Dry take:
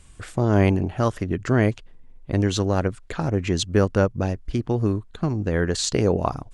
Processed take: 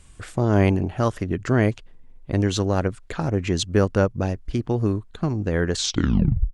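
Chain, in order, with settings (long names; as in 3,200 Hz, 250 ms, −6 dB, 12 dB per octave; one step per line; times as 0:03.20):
turntable brake at the end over 0.78 s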